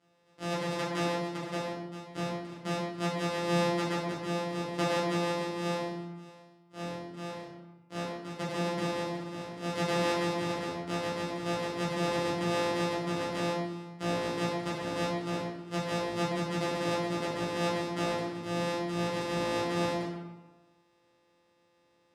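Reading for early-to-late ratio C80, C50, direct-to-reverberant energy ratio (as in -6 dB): 3.5 dB, 0.5 dB, -8.5 dB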